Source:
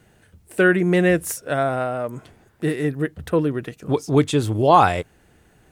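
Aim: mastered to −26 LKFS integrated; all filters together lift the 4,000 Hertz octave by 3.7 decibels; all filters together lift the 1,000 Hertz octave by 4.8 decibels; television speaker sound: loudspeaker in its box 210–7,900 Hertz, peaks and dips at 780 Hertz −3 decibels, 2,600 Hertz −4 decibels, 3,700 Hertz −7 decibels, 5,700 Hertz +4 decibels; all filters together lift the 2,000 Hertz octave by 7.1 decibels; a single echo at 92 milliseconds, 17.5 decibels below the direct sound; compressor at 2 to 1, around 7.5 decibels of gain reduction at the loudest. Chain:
parametric band 1,000 Hz +6 dB
parametric band 2,000 Hz +6.5 dB
parametric band 4,000 Hz +7.5 dB
downward compressor 2 to 1, threshold −16 dBFS
loudspeaker in its box 210–7,900 Hz, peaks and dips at 780 Hz −3 dB, 2,600 Hz −4 dB, 3,700 Hz −7 dB, 5,700 Hz +4 dB
single-tap delay 92 ms −17.5 dB
level −4.5 dB

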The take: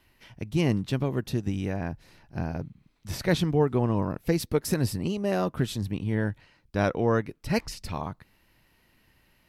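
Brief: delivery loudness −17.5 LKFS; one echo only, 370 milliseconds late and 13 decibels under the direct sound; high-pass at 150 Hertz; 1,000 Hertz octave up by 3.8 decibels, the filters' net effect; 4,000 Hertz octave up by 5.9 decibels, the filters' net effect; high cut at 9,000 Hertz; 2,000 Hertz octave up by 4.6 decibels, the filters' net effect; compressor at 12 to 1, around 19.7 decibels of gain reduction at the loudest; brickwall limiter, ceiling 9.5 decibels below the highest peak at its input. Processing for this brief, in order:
high-pass filter 150 Hz
low-pass filter 9,000 Hz
parametric band 1,000 Hz +4 dB
parametric band 2,000 Hz +3 dB
parametric band 4,000 Hz +6.5 dB
downward compressor 12 to 1, threshold −38 dBFS
brickwall limiter −35.5 dBFS
single-tap delay 370 ms −13 dB
level +29.5 dB

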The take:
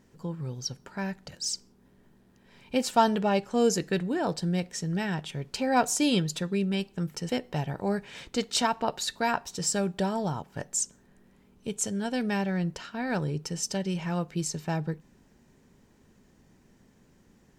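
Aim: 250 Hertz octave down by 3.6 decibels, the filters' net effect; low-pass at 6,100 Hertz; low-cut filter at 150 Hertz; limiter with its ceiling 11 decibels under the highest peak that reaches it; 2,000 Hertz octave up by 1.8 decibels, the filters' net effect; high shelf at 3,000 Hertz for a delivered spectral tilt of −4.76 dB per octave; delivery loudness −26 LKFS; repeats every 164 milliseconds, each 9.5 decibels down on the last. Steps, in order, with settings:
high-pass filter 150 Hz
low-pass filter 6,100 Hz
parametric band 250 Hz −3.5 dB
parametric band 2,000 Hz +4.5 dB
high-shelf EQ 3,000 Hz −6 dB
brickwall limiter −20 dBFS
repeating echo 164 ms, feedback 33%, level −9.5 dB
level +7 dB

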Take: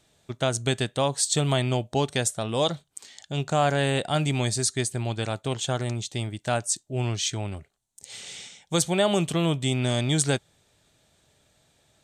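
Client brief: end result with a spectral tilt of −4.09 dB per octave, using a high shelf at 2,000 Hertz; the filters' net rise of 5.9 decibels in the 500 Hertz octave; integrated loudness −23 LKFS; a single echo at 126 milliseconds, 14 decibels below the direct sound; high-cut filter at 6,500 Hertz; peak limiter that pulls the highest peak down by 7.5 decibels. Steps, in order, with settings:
low-pass filter 6,500 Hz
parametric band 500 Hz +7 dB
high-shelf EQ 2,000 Hz +6 dB
brickwall limiter −13.5 dBFS
single-tap delay 126 ms −14 dB
level +2 dB

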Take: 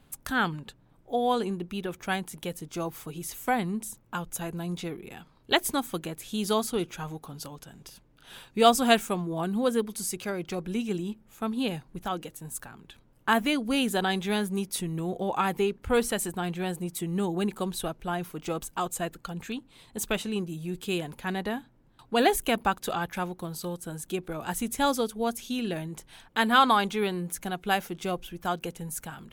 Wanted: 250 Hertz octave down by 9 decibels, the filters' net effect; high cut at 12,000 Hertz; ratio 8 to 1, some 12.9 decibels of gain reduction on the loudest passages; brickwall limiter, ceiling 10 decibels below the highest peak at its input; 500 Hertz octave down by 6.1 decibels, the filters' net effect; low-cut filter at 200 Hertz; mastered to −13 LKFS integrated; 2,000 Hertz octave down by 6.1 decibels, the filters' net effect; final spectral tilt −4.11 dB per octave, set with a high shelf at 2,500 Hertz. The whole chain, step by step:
high-pass filter 200 Hz
low-pass filter 12,000 Hz
parametric band 250 Hz −7.5 dB
parametric band 500 Hz −5 dB
parametric band 2,000 Hz −5 dB
high-shelf EQ 2,500 Hz −6.5 dB
downward compressor 8 to 1, threshold −32 dBFS
level +28.5 dB
brickwall limiter −1 dBFS

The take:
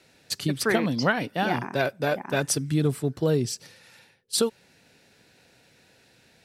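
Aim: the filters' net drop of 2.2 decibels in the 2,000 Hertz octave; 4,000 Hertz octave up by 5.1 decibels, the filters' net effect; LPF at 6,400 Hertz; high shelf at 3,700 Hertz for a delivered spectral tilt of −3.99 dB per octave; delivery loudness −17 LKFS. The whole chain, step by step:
low-pass filter 6,400 Hz
parametric band 2,000 Hz −5.5 dB
high-shelf EQ 3,700 Hz +7 dB
parametric band 4,000 Hz +3.5 dB
level +8.5 dB

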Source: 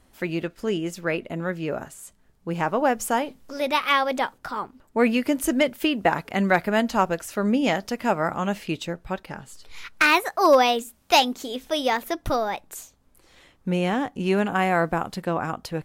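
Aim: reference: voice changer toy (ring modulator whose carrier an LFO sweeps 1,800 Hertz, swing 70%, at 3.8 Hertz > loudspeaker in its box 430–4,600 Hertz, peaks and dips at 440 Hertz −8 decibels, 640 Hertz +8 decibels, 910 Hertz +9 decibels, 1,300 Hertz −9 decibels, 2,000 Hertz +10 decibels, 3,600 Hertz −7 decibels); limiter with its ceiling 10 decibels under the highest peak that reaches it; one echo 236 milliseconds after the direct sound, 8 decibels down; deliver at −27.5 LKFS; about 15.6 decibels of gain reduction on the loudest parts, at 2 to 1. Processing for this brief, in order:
downward compressor 2 to 1, threshold −42 dBFS
brickwall limiter −26 dBFS
single-tap delay 236 ms −8 dB
ring modulator whose carrier an LFO sweeps 1,800 Hz, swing 70%, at 3.8 Hz
loudspeaker in its box 430–4,600 Hz, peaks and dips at 440 Hz −8 dB, 640 Hz +8 dB, 910 Hz +9 dB, 1,300 Hz −9 dB, 2,000 Hz +10 dB, 3,600 Hz −7 dB
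level +8.5 dB

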